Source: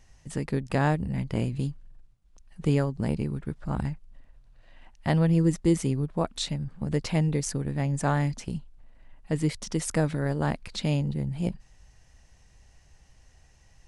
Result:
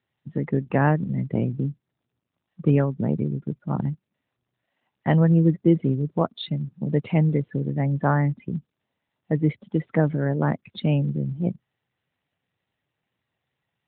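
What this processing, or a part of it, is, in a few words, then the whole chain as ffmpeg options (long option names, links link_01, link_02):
mobile call with aggressive noise cancelling: -af "adynamicequalizer=threshold=0.00355:dfrequency=760:dqfactor=6.9:tfrequency=760:tqfactor=6.9:attack=5:release=100:ratio=0.375:range=2.5:mode=cutabove:tftype=bell,highpass=frequency=110:width=0.5412,highpass=frequency=110:width=1.3066,afftdn=noise_reduction=20:noise_floor=-37,volume=5dB" -ar 8000 -c:a libopencore_amrnb -b:a 12200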